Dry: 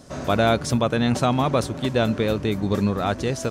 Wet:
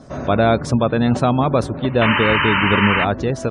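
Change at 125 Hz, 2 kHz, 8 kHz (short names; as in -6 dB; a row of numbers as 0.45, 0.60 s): +4.5, +12.0, -4.0 dB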